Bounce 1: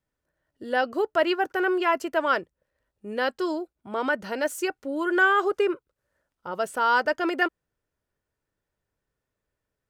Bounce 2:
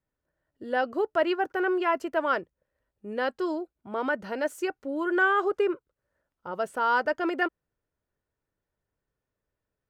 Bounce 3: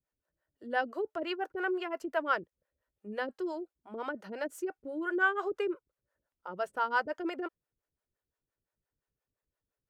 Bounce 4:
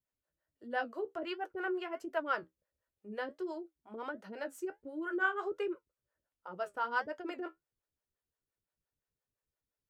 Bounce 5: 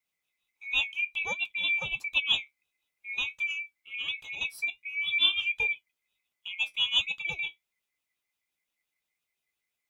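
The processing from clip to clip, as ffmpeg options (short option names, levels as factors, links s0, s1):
-af "highshelf=f=2900:g=-8.5,volume=0.841"
-filter_complex "[0:a]acrossover=split=440[s0][s1];[s0]aeval=exprs='val(0)*(1-1/2+1/2*cos(2*PI*5.8*n/s))':c=same[s2];[s1]aeval=exprs='val(0)*(1-1/2-1/2*cos(2*PI*5.8*n/s))':c=same[s3];[s2][s3]amix=inputs=2:normalize=0,volume=0.841"
-af "flanger=delay=9.2:depth=4.9:regen=-52:speed=1.4:shape=sinusoidal"
-af "afftfilt=real='real(if(lt(b,920),b+92*(1-2*mod(floor(b/92),2)),b),0)':imag='imag(if(lt(b,920),b+92*(1-2*mod(floor(b/92),2)),b),0)':win_size=2048:overlap=0.75,volume=2.24"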